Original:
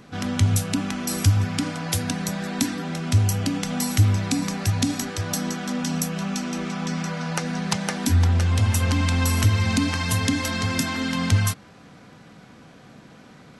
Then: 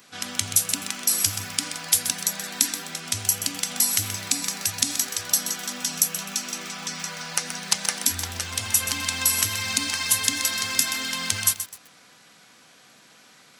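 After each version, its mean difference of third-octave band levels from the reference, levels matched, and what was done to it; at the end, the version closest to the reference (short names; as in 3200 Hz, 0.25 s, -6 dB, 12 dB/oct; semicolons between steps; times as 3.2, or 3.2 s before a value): 8.5 dB: tilt +4.5 dB/oct; lo-fi delay 0.128 s, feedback 35%, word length 5-bit, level -10 dB; gain -5 dB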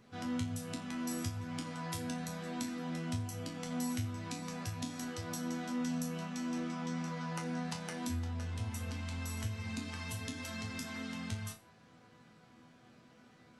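3.0 dB: compressor 2.5:1, threshold -25 dBFS, peak gain reduction 9 dB; resonator bank E2 sus4, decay 0.29 s; gain -2 dB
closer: second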